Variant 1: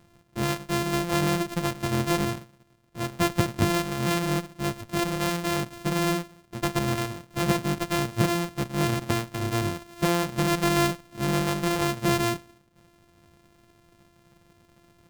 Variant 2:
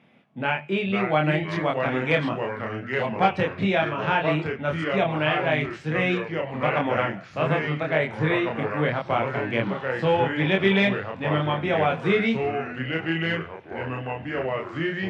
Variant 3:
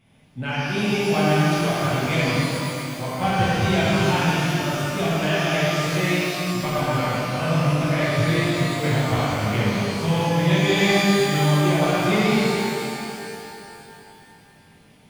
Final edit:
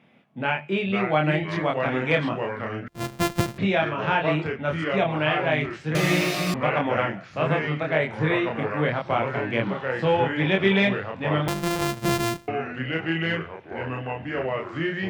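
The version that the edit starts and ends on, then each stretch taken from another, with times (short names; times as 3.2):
2
2.88–3.58 from 1
5.95–6.54 from 3
11.48–12.48 from 1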